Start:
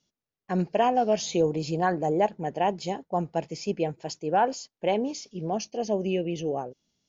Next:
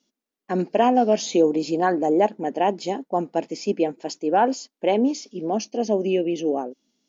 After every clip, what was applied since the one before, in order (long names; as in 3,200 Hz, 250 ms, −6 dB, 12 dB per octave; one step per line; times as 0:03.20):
low shelf with overshoot 170 Hz −13.5 dB, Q 3
level +3 dB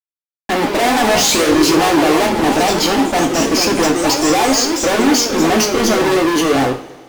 fuzz pedal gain 41 dB, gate −50 dBFS
coupled-rooms reverb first 0.4 s, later 2.1 s, from −19 dB, DRR 2 dB
delay with pitch and tempo change per echo 179 ms, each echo +2 semitones, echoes 3, each echo −6 dB
level −2 dB